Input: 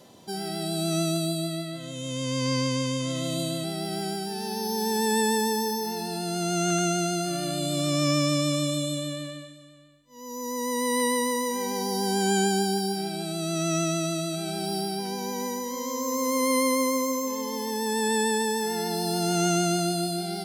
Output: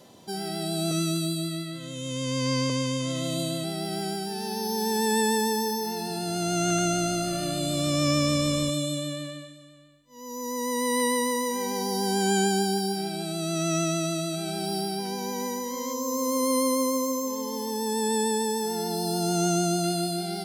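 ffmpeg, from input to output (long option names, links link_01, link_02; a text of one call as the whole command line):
ffmpeg -i in.wav -filter_complex "[0:a]asettb=1/sr,asplit=3[link_01][link_02][link_03];[link_01]atrim=end=0.914[link_04];[link_02]atrim=start=0.91:end=2.7,asetpts=PTS-STARTPTS,afade=type=in:duration=0.004:curve=qsin,afade=type=out:start_time=1.786:duration=0.004:curve=qsin,asuperstop=centerf=760:order=20:qfactor=3.1[link_05];[link_03]atrim=start=2.696[link_06];[link_04][link_05]acrossfade=duration=0.004:curve1=hsin:curve2=qsin[link_07];[link_07][link_06]acrossfade=duration=0.004:curve1=qsin:curve2=hsin,asettb=1/sr,asplit=3[link_08][link_09][link_10];[link_08]atrim=end=5.854[link_11];[link_09]atrim=start=5.85:end=8.7,asetpts=PTS-STARTPTS,afade=type=in:duration=0.004:curve=qsin,afade=type=out:start_time=2.846:duration=0.004:curve=qsin,asplit=6[link_12][link_13][link_14][link_15][link_16][link_17];[link_13]adelay=205,afreqshift=-62,volume=-17dB[link_18];[link_14]adelay=410,afreqshift=-124,volume=-22.2dB[link_19];[link_15]adelay=615,afreqshift=-186,volume=-27.4dB[link_20];[link_16]adelay=820,afreqshift=-248,volume=-32.6dB[link_21];[link_17]adelay=1025,afreqshift=-310,volume=-37.8dB[link_22];[link_12][link_18][link_19][link_20][link_21][link_22]amix=inputs=6:normalize=0,atrim=end_sample=125685[link_23];[link_10]atrim=start=8.696[link_24];[link_11][link_23]acrossfade=duration=0.004:curve1=hsin:curve2=qsin[link_25];[link_25][link_24]acrossfade=duration=0.004:curve1=qsin:curve2=hsin,asettb=1/sr,asplit=3[link_26][link_27][link_28];[link_26]atrim=end=15.934[link_29];[link_27]atrim=start=15.93:end=19.84,asetpts=PTS-STARTPTS,afade=type=in:duration=0.004:curve=qsin,afade=type=out:start_time=3.906:duration=0.004:curve=qsin,equalizer=frequency=2100:width=1.6:gain=-11[link_30];[link_28]atrim=start=19.836[link_31];[link_29][link_30]acrossfade=duration=0.004:curve1=hsin:curve2=qsin[link_32];[link_32][link_31]acrossfade=duration=0.004:curve1=qsin:curve2=hsin" out.wav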